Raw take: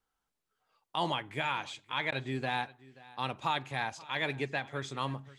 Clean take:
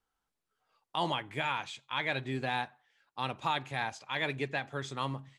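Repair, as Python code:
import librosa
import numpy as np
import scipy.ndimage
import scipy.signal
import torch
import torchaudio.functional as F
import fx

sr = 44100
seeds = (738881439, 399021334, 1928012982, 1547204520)

y = fx.fix_interpolate(x, sr, at_s=(2.11,), length_ms=10.0)
y = fx.fix_echo_inverse(y, sr, delay_ms=531, level_db=-21.0)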